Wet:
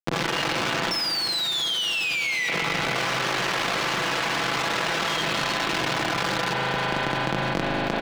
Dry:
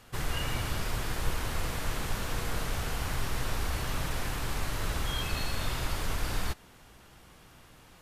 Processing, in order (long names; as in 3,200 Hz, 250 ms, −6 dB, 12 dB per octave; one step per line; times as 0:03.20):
0:00.91–0:02.49: sound drawn into the spectrogram fall 1,900–5,400 Hz −24 dBFS
0:02.95–0:05.17: low-shelf EQ 490 Hz −7.5 dB
comparator with hysteresis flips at −45 dBFS
high-pass filter 87 Hz 6 dB per octave
three-way crossover with the lows and the highs turned down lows −18 dB, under 150 Hz, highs −17 dB, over 6,300 Hz
comb filter 6 ms, depth 44%
echo with a time of its own for lows and highs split 580 Hz, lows 106 ms, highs 319 ms, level −15.5 dB
spring reverb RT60 3.8 s, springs 38 ms, chirp 25 ms, DRR 4 dB
envelope flattener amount 100%